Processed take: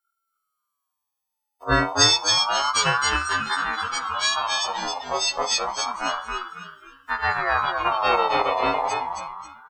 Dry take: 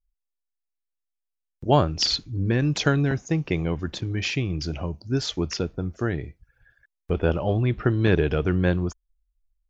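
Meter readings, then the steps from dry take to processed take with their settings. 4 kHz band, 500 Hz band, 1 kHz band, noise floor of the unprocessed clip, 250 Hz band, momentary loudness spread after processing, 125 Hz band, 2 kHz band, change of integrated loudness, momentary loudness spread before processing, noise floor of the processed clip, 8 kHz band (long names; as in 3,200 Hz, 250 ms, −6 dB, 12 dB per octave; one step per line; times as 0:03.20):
+8.0 dB, −2.5 dB, +11.5 dB, −83 dBFS, −10.0 dB, 13 LU, −13.5 dB, +8.5 dB, +3.0 dB, 9 LU, −82 dBFS, can't be measured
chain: every partial snapped to a pitch grid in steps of 4 semitones
on a send: echo with shifted repeats 270 ms, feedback 36%, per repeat −120 Hz, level −3.5 dB
on the sum: rectangular room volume 200 cubic metres, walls furnished, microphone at 0.38 metres
ring modulator whose carrier an LFO sweeps 1,100 Hz, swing 25%, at 0.29 Hz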